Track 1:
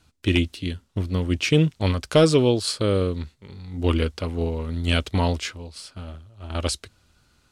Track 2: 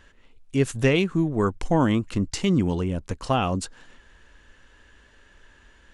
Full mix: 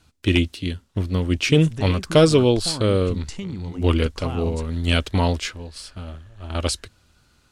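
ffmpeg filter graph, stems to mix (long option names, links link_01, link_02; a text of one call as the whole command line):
ffmpeg -i stem1.wav -i stem2.wav -filter_complex "[0:a]volume=2dB[link_01];[1:a]asubboost=boost=2.5:cutoff=190,acompressor=threshold=-22dB:ratio=6,adelay=950,volume=-5.5dB[link_02];[link_01][link_02]amix=inputs=2:normalize=0" out.wav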